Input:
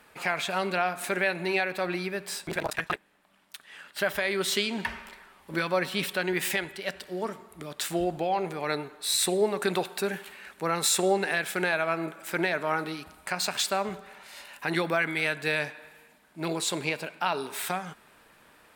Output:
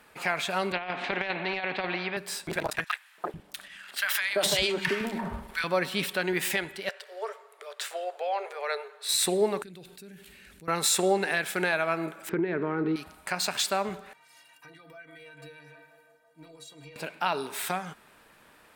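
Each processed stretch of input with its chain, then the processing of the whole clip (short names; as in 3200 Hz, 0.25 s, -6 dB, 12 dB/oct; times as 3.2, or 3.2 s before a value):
0.72–2.17 speaker cabinet 160–2800 Hz, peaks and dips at 760 Hz +7 dB, 1300 Hz -7 dB, 2200 Hz +3 dB + negative-ratio compressor -27 dBFS, ratio -0.5 + spectral compressor 2:1
2.84–5.64 transient shaper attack +4 dB, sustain +12 dB + three bands offset in time highs, mids, lows 0.34/0.44 s, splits 220/1100 Hz
6.89–9.09 rippled Chebyshev high-pass 410 Hz, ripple 3 dB + bell 14000 Hz -6 dB 1 oct
9.62–10.68 passive tone stack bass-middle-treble 10-0-1 + fast leveller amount 70%
12.29–12.96 LPF 1900 Hz + resonant low shelf 510 Hz +7 dB, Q 3 + compressor 12:1, threshold -23 dBFS
14.13–16.96 narrowing echo 0.163 s, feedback 75%, band-pass 780 Hz, level -15 dB + compressor 16:1, threshold -34 dBFS + metallic resonator 140 Hz, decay 0.26 s, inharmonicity 0.03
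whole clip: dry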